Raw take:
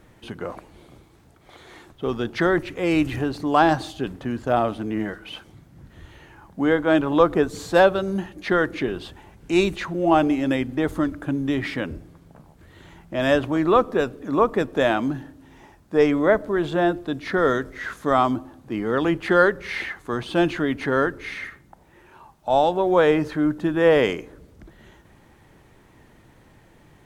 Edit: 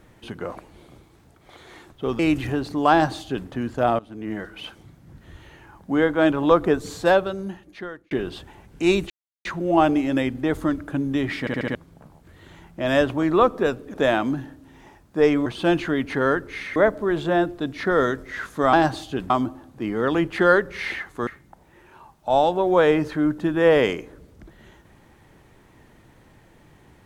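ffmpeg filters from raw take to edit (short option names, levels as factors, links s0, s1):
-filter_complex "[0:a]asplit=16[s0][s1][s2][s3][s4][s5][s6][s7][s8][s9][s10][s11][s12][s13][s14][s15];[s0]atrim=end=2.192[s16];[s1]atrim=start=2.878:end=4.68,asetpts=PTS-STARTPTS,afade=t=out:st=1.798:d=0.004:c=hsin:silence=0.1[s17];[s2]atrim=start=4.68:end=8.8,asetpts=PTS-STARTPTS,afade=t=in:d=0.52:silence=0.1,afade=t=out:st=2.86:d=1.26[s18];[s3]atrim=start=8.8:end=9.79,asetpts=PTS-STARTPTS,afade=t=in:d=0.004:c=hsin,afade=t=out:st=0.986:d=0.004:c=hsin,apad=pad_dur=0.35[s19];[s4]atrim=start=9.79:end=11.812,asetpts=PTS-STARTPTS,afade=t=in:d=0.004:c=hsin[s20];[s5]atrim=start=11.738:end=11.812[s21];[s6]atrim=start=11.738:end=11.812[s22];[s7]atrim=start=11.738:end=11.812[s23];[s8]atrim=start=11.738:end=11.812[s24];[s9]atrim=start=12.088:end=14.282[s25];[s10]atrim=start=14.708:end=16.232[s26];[s11]atrim=start=20.168:end=21.472[s27];[s12]atrim=start=16.228:end=18.202[s28];[s13]atrim=start=3.598:end=4.172[s29];[s14]atrim=start=18.198:end=20.172[s30];[s15]atrim=start=21.468[s31];[s17][s18][s19][s20]concat=n=4:v=0:a=1[s32];[s16][s32]acrossfade=d=0.004:c1=hsin:c2=hsin[s33];[s33][s21]acrossfade=d=0.004:c1=hsin:c2=hsin[s34];[s34][s22]acrossfade=d=0.004:c1=hsin:c2=hsin[s35];[s35][s23]acrossfade=d=0.004:c1=hsin:c2=hsin[s36];[s36][s24]acrossfade=d=0.004:c1=hsin:c2=hsin[s37];[s37][s25]acrossfade=d=0.004:c1=hsin:c2=hsin[s38];[s38][s26]acrossfade=d=0.004:c1=hsin:c2=hsin[s39];[s39][s27]acrossfade=d=0.004:c1=hsin:c2=hsin[s40];[s40][s28]acrossfade=d=0.004:c1=hsin:c2=hsin[s41];[s41][s29]acrossfade=d=0.004:c1=hsin:c2=hsin[s42];[s42][s30]acrossfade=d=0.004:c1=hsin:c2=hsin[s43];[s43][s31]acrossfade=d=0.004:c1=hsin:c2=hsin"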